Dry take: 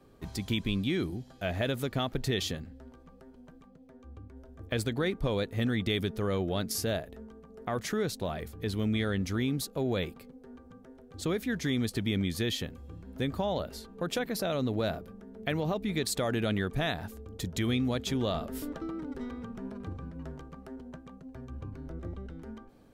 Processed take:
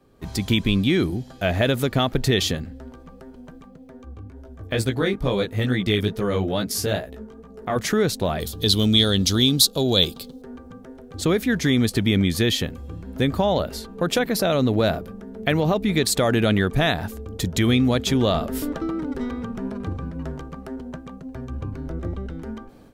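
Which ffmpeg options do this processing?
ffmpeg -i in.wav -filter_complex "[0:a]asettb=1/sr,asplit=3[link_01][link_02][link_03];[link_01]atrim=end=4.054[link_04];[link_02]atrim=start=4.05:end=7.76,asetpts=PTS-STARTPTS,afade=type=in:duration=0.004:curve=qsin,afade=type=out:start_time=3.706:duration=0.004:curve=qsin,flanger=delay=15:depth=5.2:speed=2.3[link_05];[link_03]atrim=start=7.756[link_06];[link_04][link_05]acrossfade=duration=0.004:curve1=hsin:curve2=qsin[link_07];[link_07][link_06]acrossfade=duration=0.004:curve1=qsin:curve2=hsin,asettb=1/sr,asplit=3[link_08][link_09][link_10];[link_08]atrim=end=8.404[link_11];[link_09]atrim=start=8.4:end=10.42,asetpts=PTS-STARTPTS,afade=type=in:duration=0.004:curve=qsin,afade=type=out:start_time=2.016:duration=0.004:curve=qsin,highshelf=frequency=2800:width_type=q:width=3:gain=9[link_12];[link_10]atrim=start=10.416[link_13];[link_11][link_12]acrossfade=duration=0.004:curve1=hsin:curve2=qsin[link_14];[link_14][link_13]acrossfade=duration=0.004:curve1=qsin:curve2=hsin,dynaudnorm=framelen=160:gausssize=3:maxgain=10.5dB" out.wav

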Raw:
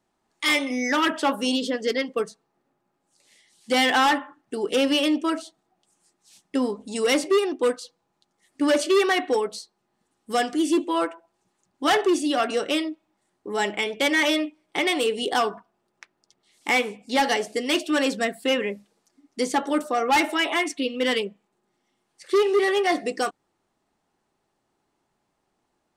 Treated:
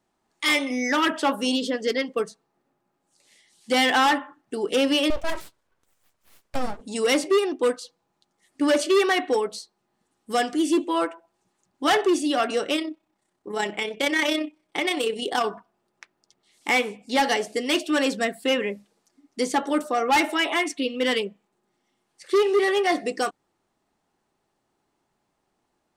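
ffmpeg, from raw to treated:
ffmpeg -i in.wav -filter_complex "[0:a]asettb=1/sr,asplit=3[link_01][link_02][link_03];[link_01]atrim=end=5.104[link_04];[link_02]atrim=start=5.1:end=6.81,asetpts=PTS-STARTPTS,afade=type=in:duration=0.004:curve=qsin,afade=type=out:start_time=1.706:duration=0.004:curve=qsin,aeval=exprs='abs(val(0))':channel_layout=same[link_05];[link_03]atrim=start=6.806[link_06];[link_04][link_05]acrossfade=duration=0.004:curve1=hsin:curve2=qsin[link_07];[link_07][link_06]acrossfade=duration=0.004:curve1=qsin:curve2=hsin,asplit=3[link_08][link_09][link_10];[link_08]afade=type=out:start_time=12.74:duration=0.02[link_11];[link_09]tremolo=f=32:d=0.462,afade=type=in:start_time=12.74:duration=0.02,afade=type=out:start_time=15.44:duration=0.02[link_12];[link_10]afade=type=in:start_time=15.44:duration=0.02[link_13];[link_11][link_12][link_13]amix=inputs=3:normalize=0" out.wav

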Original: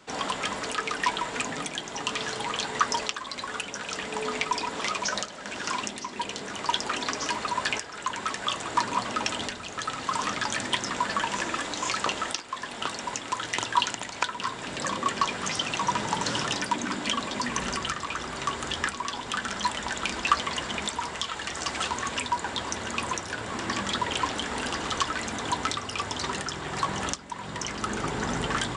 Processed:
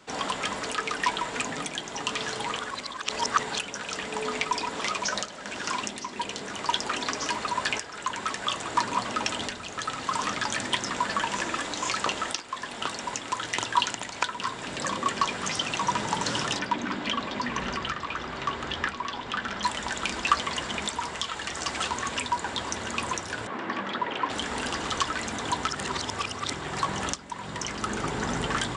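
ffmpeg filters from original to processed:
ffmpeg -i in.wav -filter_complex "[0:a]asettb=1/sr,asplit=3[link_01][link_02][link_03];[link_01]atrim=end=16.594[link_04];[link_02]atrim=start=16.59:end=19.63,asetpts=PTS-STARTPTS,afade=type=in:duration=0.004:curve=qsin,afade=type=out:start_time=3.036:duration=0.004:curve=qsin,lowpass=4000[link_05];[link_03]atrim=start=19.626[link_06];[link_04][link_05]acrossfade=duration=0.004:curve1=hsin:curve2=qsin[link_07];[link_07][link_06]acrossfade=duration=0.004:curve1=qsin:curve2=hsin,asettb=1/sr,asplit=3[link_08][link_09][link_10];[link_08]atrim=end=23.474[link_11];[link_09]atrim=start=23.47:end=24.3,asetpts=PTS-STARTPTS,afade=type=in:duration=0.004:curve=qsin,afade=type=out:start_time=0.826:duration=0.004:curve=qsin,highpass=200,lowpass=2400[link_12];[link_10]atrim=start=24.296[link_13];[link_11][link_12]acrossfade=duration=0.004:curve1=hsin:curve2=qsin[link_14];[link_14][link_13]acrossfade=duration=0.004:curve1=qsin:curve2=hsin,asplit=5[link_15][link_16][link_17][link_18][link_19];[link_15]atrim=end=2.592[link_20];[link_16]atrim=start=2.588:end=3.592,asetpts=PTS-STARTPTS,areverse[link_21];[link_17]atrim=start=3.588:end=25.682[link_22];[link_18]atrim=start=25.678:end=26.532,asetpts=PTS-STARTPTS,areverse[link_23];[link_19]atrim=start=26.528[link_24];[link_20][link_21]acrossfade=duration=0.004:curve1=hsin:curve2=hsin[link_25];[link_25][link_22]acrossfade=duration=0.004:curve1=hsin:curve2=hsin[link_26];[link_26][link_23]acrossfade=duration=0.004:curve1=hsin:curve2=hsin[link_27];[link_27][link_24]acrossfade=duration=0.004:curve1=hsin:curve2=hsin" out.wav

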